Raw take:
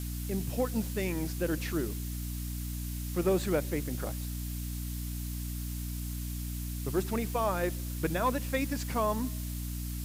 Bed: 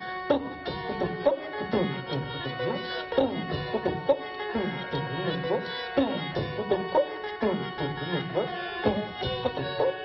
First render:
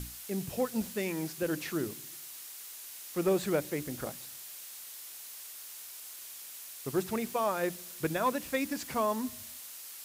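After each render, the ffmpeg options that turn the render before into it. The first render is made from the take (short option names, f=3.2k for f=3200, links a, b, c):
-af "bandreject=f=60:t=h:w=6,bandreject=f=120:t=h:w=6,bandreject=f=180:t=h:w=6,bandreject=f=240:t=h:w=6,bandreject=f=300:t=h:w=6"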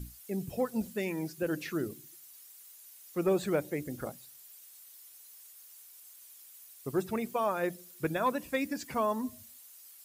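-af "afftdn=nr=13:nf=-46"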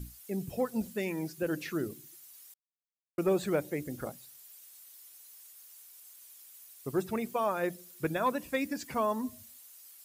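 -filter_complex "[0:a]asplit=3[a][b][c];[a]atrim=end=2.54,asetpts=PTS-STARTPTS,afade=t=out:st=2.536:d=0.004:c=hsin[d];[b]atrim=start=2.54:end=3.18,asetpts=PTS-STARTPTS,volume=0[e];[c]atrim=start=3.18,asetpts=PTS-STARTPTS,afade=t=in:d=0.004:c=hsin[f];[d][e][f]concat=n=3:v=0:a=1"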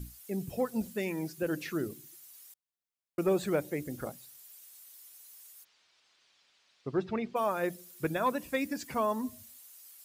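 -filter_complex "[0:a]asplit=3[a][b][c];[a]afade=t=out:st=5.63:d=0.02[d];[b]lowpass=f=4.5k:w=0.5412,lowpass=f=4.5k:w=1.3066,afade=t=in:st=5.63:d=0.02,afade=t=out:st=7.35:d=0.02[e];[c]afade=t=in:st=7.35:d=0.02[f];[d][e][f]amix=inputs=3:normalize=0"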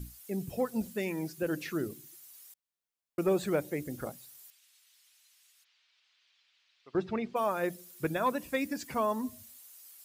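-filter_complex "[0:a]asettb=1/sr,asplit=3[a][b][c];[a]atrim=end=4.504[d];[b]atrim=start=4.5:end=6.95,asetpts=PTS-STARTPTS,afade=t=in:d=0.004:c=qsin,afade=t=out:st=2.446:d=0.004:c=qsin,bandpass=f=2.8k:t=q:w=1[e];[c]atrim=start=6.946[f];[d][e]acrossfade=d=0.004:c1=hsin:c2=qsin[g];[g][f]acrossfade=d=0.004:c1=qsin:c2=hsin"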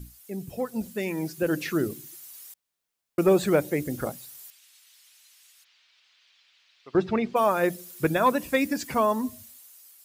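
-af "dynaudnorm=f=330:g=7:m=8dB"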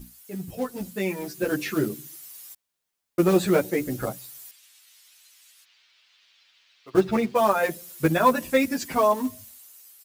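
-filter_complex "[0:a]asplit=2[a][b];[b]acrusher=bits=3:mode=log:mix=0:aa=0.000001,volume=-3dB[c];[a][c]amix=inputs=2:normalize=0,asplit=2[d][e];[e]adelay=9.4,afreqshift=0.36[f];[d][f]amix=inputs=2:normalize=1"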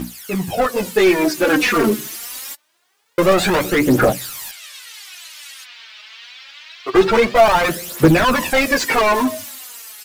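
-filter_complex "[0:a]asplit=2[a][b];[b]highpass=f=720:p=1,volume=30dB,asoftclip=type=tanh:threshold=-7dB[c];[a][c]amix=inputs=2:normalize=0,lowpass=f=2.4k:p=1,volume=-6dB,aphaser=in_gain=1:out_gain=1:delay=4.8:decay=0.59:speed=0.25:type=triangular"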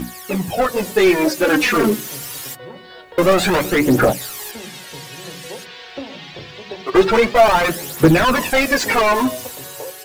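-filter_complex "[1:a]volume=-6.5dB[a];[0:a][a]amix=inputs=2:normalize=0"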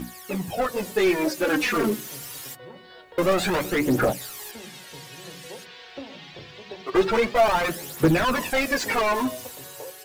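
-af "volume=-7.5dB"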